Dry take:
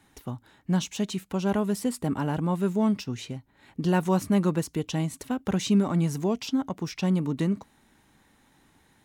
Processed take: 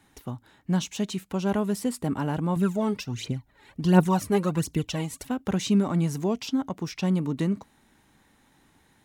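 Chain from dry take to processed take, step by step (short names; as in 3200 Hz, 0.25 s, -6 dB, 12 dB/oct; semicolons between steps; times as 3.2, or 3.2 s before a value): 2.56–5.27 phaser 1.4 Hz, delay 2.5 ms, feedback 64%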